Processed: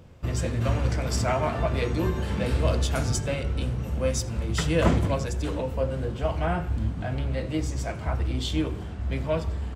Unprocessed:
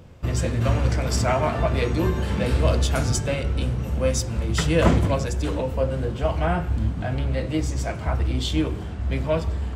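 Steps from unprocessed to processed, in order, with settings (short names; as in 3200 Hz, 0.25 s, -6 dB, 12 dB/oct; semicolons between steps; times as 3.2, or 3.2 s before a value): echo 82 ms -23.5 dB; gain -3.5 dB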